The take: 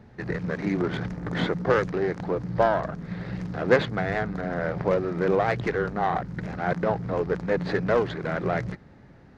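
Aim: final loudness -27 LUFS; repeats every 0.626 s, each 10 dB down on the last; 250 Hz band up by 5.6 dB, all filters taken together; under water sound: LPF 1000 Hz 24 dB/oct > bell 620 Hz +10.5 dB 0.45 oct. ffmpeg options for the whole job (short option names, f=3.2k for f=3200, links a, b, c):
-af "lowpass=f=1k:w=0.5412,lowpass=f=1k:w=1.3066,equalizer=f=250:t=o:g=8,equalizer=f=620:t=o:w=0.45:g=10.5,aecho=1:1:626|1252|1878|2504:0.316|0.101|0.0324|0.0104,volume=-6dB"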